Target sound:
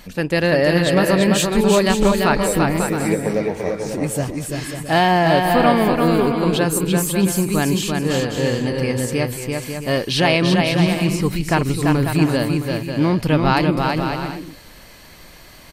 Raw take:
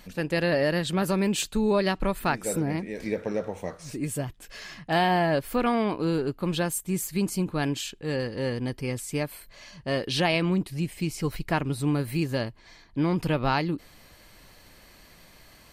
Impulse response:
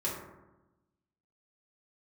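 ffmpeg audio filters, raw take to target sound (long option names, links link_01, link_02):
-af "aecho=1:1:340|544|666.4|739.8|783.9:0.631|0.398|0.251|0.158|0.1,volume=7.5dB"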